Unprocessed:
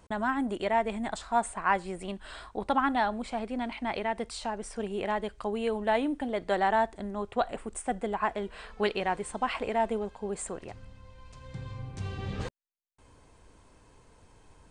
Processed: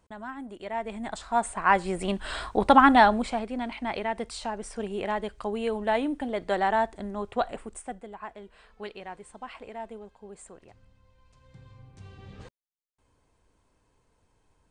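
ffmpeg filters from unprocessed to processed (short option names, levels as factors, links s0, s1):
-af "volume=3.16,afade=t=in:st=0.59:d=0.92:silence=0.251189,afade=t=in:st=1.51:d=0.82:silence=0.421697,afade=t=out:st=3.04:d=0.41:silence=0.354813,afade=t=out:st=7.43:d=0.62:silence=0.251189"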